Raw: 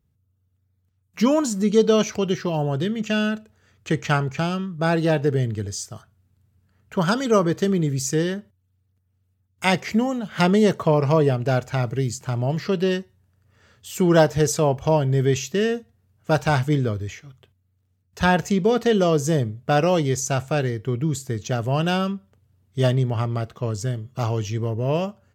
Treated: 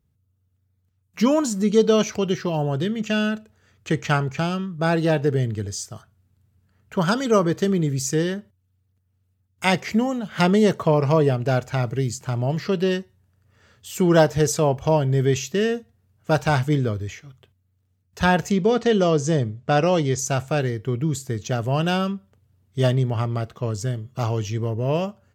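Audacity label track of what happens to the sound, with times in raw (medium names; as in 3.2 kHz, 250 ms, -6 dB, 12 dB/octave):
18.520000	20.190000	low-pass 7.8 kHz 24 dB/octave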